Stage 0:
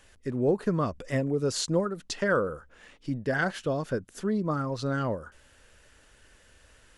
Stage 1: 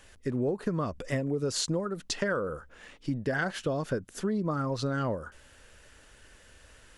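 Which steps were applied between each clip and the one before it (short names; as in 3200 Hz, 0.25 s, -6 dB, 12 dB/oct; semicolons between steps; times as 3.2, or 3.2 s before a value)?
compressor 10:1, threshold -28 dBFS, peak gain reduction 9.5 dB; gain +2.5 dB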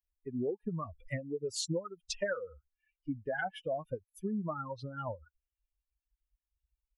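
per-bin expansion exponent 3; dynamic EQ 690 Hz, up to +7 dB, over -52 dBFS, Q 2.3; gain -1.5 dB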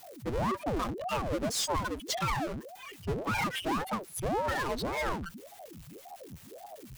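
power-law curve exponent 0.35; ring modulator with a swept carrier 430 Hz, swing 80%, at 1.8 Hz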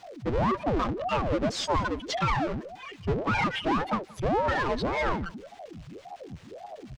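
air absorption 140 m; echo 0.177 s -22 dB; gain +5.5 dB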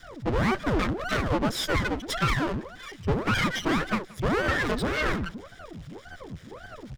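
minimum comb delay 0.56 ms; gain +3 dB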